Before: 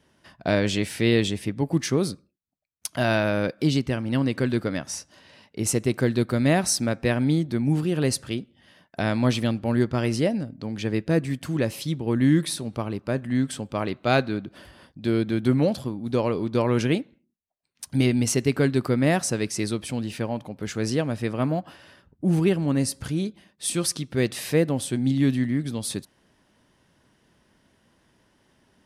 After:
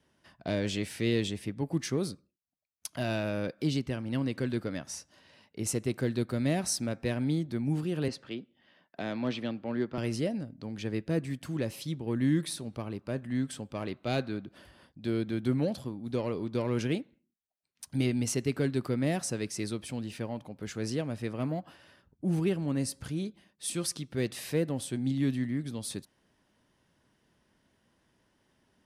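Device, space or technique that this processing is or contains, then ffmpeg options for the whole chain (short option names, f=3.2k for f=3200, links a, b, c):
one-band saturation: -filter_complex "[0:a]asettb=1/sr,asplit=3[a][b][c];[a]atrim=end=8.084[d];[b]atrim=start=8.08:end=9.98,asetpts=PTS-STARTPTS,afade=t=in:d=0.004:c=qsin,afade=t=out:st=1.896:d=0.004:c=qsin,acrossover=split=180 4700:gain=0.224 1 0.0794[e][f][g];[e][f][g]amix=inputs=3:normalize=0[h];[c]atrim=start=9.976[i];[d][h]acrossfade=d=0.004:c1=hsin:c2=qsin[j];[j][i]acrossfade=d=0.004:c1=qsin:c2=hsin,acrossover=split=580|2300[k][l][m];[l]asoftclip=type=tanh:threshold=-29dB[n];[k][n][m]amix=inputs=3:normalize=0,volume=-7.5dB"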